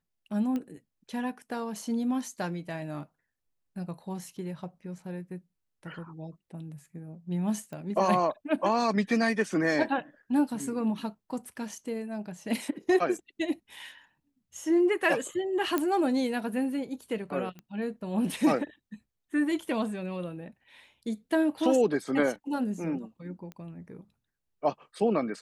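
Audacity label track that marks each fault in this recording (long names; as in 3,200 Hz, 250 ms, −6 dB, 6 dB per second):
0.560000	0.560000	click −22 dBFS
7.730000	7.730000	click −29 dBFS
15.780000	15.780000	click −13 dBFS
17.590000	17.590000	click −31 dBFS
23.520000	23.520000	click −29 dBFS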